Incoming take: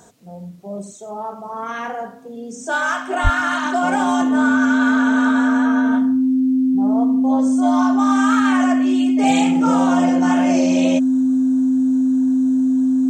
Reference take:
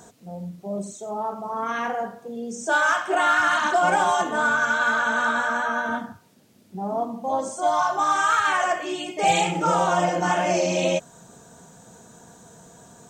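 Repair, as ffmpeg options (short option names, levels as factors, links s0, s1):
-filter_complex "[0:a]bandreject=f=260:w=30,asplit=3[s0][s1][s2];[s0]afade=t=out:st=3.23:d=0.02[s3];[s1]highpass=f=140:w=0.5412,highpass=f=140:w=1.3066,afade=t=in:st=3.23:d=0.02,afade=t=out:st=3.35:d=0.02[s4];[s2]afade=t=in:st=3.35:d=0.02[s5];[s3][s4][s5]amix=inputs=3:normalize=0"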